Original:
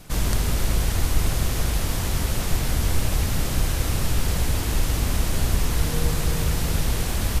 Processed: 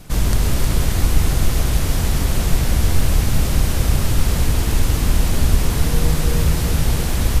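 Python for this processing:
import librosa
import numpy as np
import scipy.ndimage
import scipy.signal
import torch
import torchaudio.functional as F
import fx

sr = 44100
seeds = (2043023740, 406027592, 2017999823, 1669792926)

p1 = fx.low_shelf(x, sr, hz=350.0, db=4.0)
p2 = p1 + fx.echo_single(p1, sr, ms=312, db=-6.0, dry=0)
y = p2 * librosa.db_to_amplitude(2.0)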